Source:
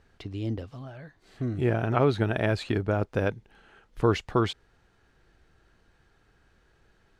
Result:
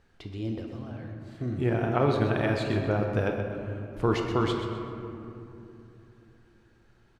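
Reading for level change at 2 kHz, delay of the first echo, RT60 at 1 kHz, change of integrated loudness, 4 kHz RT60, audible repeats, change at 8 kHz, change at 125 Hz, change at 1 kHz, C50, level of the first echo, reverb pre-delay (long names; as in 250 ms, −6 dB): −0.5 dB, 127 ms, 2.7 s, −1.5 dB, 1.4 s, 1, can't be measured, −0.5 dB, 0.0 dB, 3.0 dB, −9.5 dB, 6 ms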